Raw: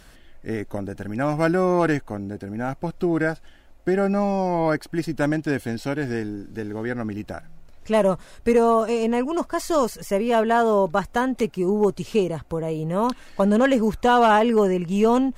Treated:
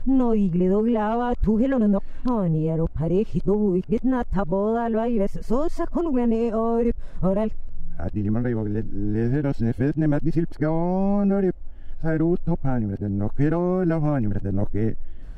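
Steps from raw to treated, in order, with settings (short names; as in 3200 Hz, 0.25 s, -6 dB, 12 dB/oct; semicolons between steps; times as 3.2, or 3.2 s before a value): whole clip reversed; compressor, threshold -20 dBFS, peak gain reduction 7.5 dB; tilt -4 dB/oct; gain -3.5 dB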